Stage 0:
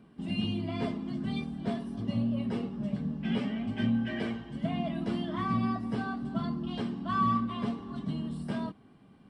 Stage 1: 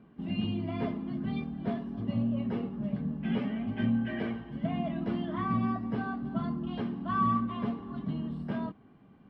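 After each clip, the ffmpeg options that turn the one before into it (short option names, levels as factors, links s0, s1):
-af "lowpass=2500"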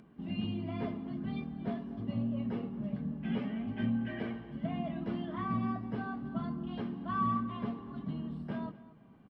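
-filter_complex "[0:a]acompressor=mode=upward:threshold=0.00316:ratio=2.5,asplit=2[s0][s1];[s1]adelay=234,lowpass=f=3800:p=1,volume=0.141,asplit=2[s2][s3];[s3]adelay=234,lowpass=f=3800:p=1,volume=0.31,asplit=2[s4][s5];[s5]adelay=234,lowpass=f=3800:p=1,volume=0.31[s6];[s0][s2][s4][s6]amix=inputs=4:normalize=0,volume=0.631"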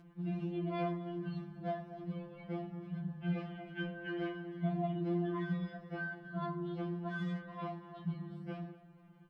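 -filter_complex "[0:a]asplit=2[s0][s1];[s1]asoftclip=type=tanh:threshold=0.0119,volume=0.251[s2];[s0][s2]amix=inputs=2:normalize=0,afftfilt=real='re*2.83*eq(mod(b,8),0)':imag='im*2.83*eq(mod(b,8),0)':win_size=2048:overlap=0.75"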